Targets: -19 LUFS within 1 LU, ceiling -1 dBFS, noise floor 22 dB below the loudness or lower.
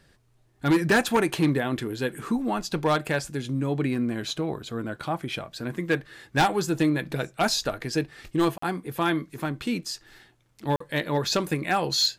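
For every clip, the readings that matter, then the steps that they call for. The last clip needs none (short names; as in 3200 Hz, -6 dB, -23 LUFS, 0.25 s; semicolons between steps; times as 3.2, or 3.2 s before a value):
clipped 0.8%; flat tops at -15.5 dBFS; dropouts 2; longest dropout 44 ms; loudness -26.5 LUFS; peak -15.5 dBFS; loudness target -19.0 LUFS
-> clip repair -15.5 dBFS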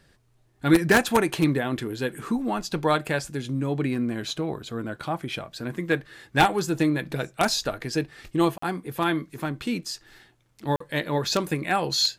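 clipped 0.0%; dropouts 2; longest dropout 44 ms
-> interpolate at 8.58/10.76, 44 ms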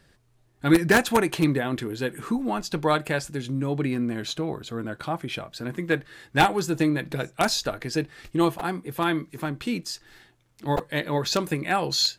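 dropouts 0; loudness -26.0 LUFS; peak -6.5 dBFS; loudness target -19.0 LUFS
-> gain +7 dB; limiter -1 dBFS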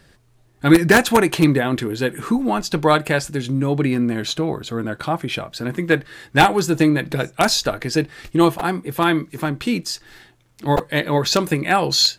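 loudness -19.0 LUFS; peak -1.0 dBFS; noise floor -56 dBFS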